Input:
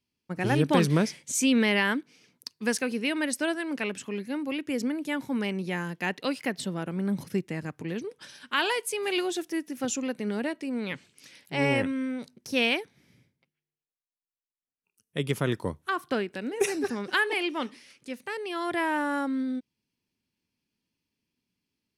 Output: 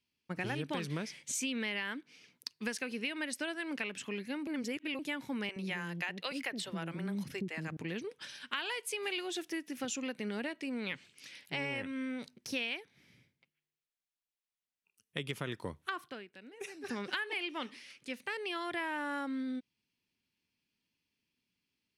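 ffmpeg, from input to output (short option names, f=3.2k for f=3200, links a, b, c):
-filter_complex "[0:a]asettb=1/sr,asplit=3[a][b][c];[a]atrim=end=5.494[d];[b]atrim=start=5.49:end=7.77,asetpts=PTS-STARTPTS,afade=t=in:d=0.004:c=qsin,afade=t=out:st=2.276:d=0.004:c=qsin,acrossover=split=400[e][f];[e]adelay=70[g];[g][f]amix=inputs=2:normalize=0,atrim=end_sample=100548[h];[c]atrim=start=7.766[i];[d][h]acrossfade=d=0.004:c1=hsin:c2=qsin[j];[j][i]acrossfade=d=0.004:c1=qsin:c2=hsin,asplit=5[k][l][m][n][o];[k]atrim=end=4.472[p];[l]atrim=start=4.468:end=4.992,asetpts=PTS-STARTPTS,areverse[q];[m]atrim=start=4.988:end=16.37,asetpts=PTS-STARTPTS,afade=t=out:st=11.072:d=0.31:c=exp:silence=0.16788[r];[n]atrim=start=16.37:end=16.59,asetpts=PTS-STARTPTS,volume=-15.5dB[s];[o]atrim=start=16.59,asetpts=PTS-STARTPTS,afade=t=in:d=0.31:c=exp:silence=0.16788[t];[p][q]acrossfade=d=0.004:c1=hsin:c2=hsin[u];[r][s][t]concat=n=3:v=0:a=1[v];[u][v]acrossfade=d=0.004:c1=hsin:c2=hsin,equalizer=f=2.7k:w=0.67:g=7.5,acompressor=threshold=-29dB:ratio=6,volume=-5dB"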